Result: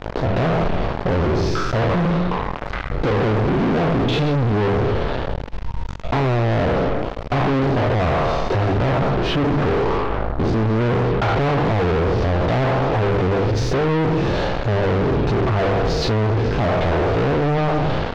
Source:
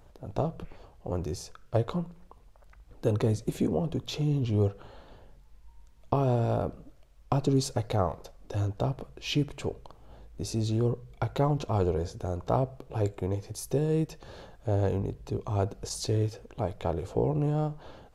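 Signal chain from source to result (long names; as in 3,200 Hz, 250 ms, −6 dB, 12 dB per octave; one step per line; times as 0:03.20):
peak hold with a decay on every bin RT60 0.95 s
mains-hum notches 50/100/150/200/250/300 Hz
treble cut that deepens with the level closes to 1,300 Hz, closed at −23.5 dBFS
0:08.77–0:11.35: high shelf with overshoot 1,800 Hz −9 dB, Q 3
leveller curve on the samples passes 5
gain into a clipping stage and back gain 23.5 dB
high-frequency loss of the air 220 metres
envelope flattener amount 50%
level +6.5 dB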